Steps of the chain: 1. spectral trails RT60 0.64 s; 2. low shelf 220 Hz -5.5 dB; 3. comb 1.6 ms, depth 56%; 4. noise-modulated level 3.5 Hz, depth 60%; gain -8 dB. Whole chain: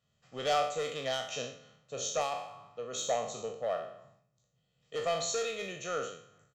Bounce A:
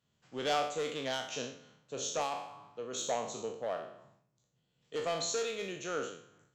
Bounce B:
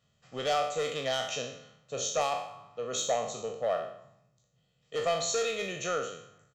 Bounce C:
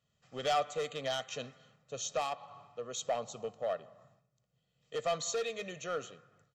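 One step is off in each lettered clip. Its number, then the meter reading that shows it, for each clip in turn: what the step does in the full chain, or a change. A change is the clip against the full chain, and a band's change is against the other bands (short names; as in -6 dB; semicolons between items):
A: 3, 250 Hz band +5.5 dB; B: 4, momentary loudness spread change -2 LU; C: 1, loudness change -2.0 LU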